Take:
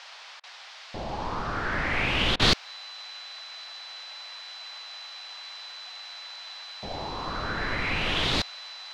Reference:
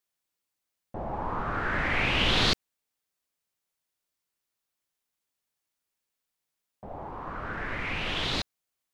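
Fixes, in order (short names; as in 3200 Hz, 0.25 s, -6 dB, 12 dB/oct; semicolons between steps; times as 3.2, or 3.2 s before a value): notch 4000 Hz, Q 30; interpolate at 0.4/2.36, 34 ms; noise print and reduce 30 dB; gain correction -4 dB, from 2.42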